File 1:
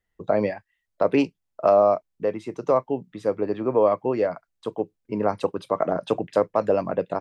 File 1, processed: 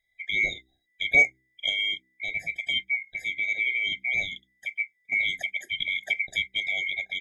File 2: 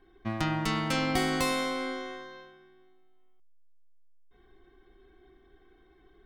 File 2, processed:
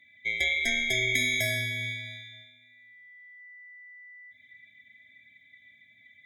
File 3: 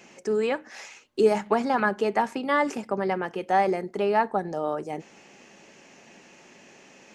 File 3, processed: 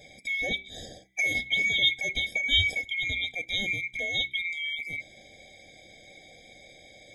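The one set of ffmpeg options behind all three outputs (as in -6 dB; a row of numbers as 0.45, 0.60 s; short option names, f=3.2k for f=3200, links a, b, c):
-af "afftfilt=real='real(if(lt(b,920),b+92*(1-2*mod(floor(b/92),2)),b),0)':imag='imag(if(lt(b,920),b+92*(1-2*mod(floor(b/92),2)),b),0)':win_size=2048:overlap=0.75,bandreject=f=64.35:t=h:w=4,bandreject=f=128.7:t=h:w=4,bandreject=f=193.05:t=h:w=4,bandreject=f=257.4:t=h:w=4,bandreject=f=321.75:t=h:w=4,bandreject=f=386.1:t=h:w=4,afftfilt=real='re*eq(mod(floor(b*sr/1024/780),2),0)':imag='im*eq(mod(floor(b*sr/1024/780),2),0)':win_size=1024:overlap=0.75,volume=3dB"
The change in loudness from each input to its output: -2.0, +3.5, -1.0 LU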